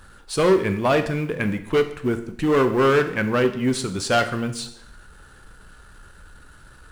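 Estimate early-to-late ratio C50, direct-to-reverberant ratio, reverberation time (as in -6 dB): 11.5 dB, 8.0 dB, 0.75 s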